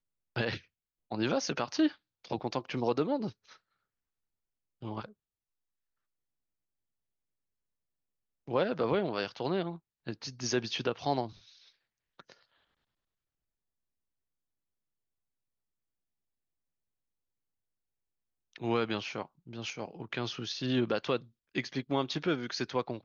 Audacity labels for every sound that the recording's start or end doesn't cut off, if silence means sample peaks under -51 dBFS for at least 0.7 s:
4.820000	5.120000	sound
8.480000	12.430000	sound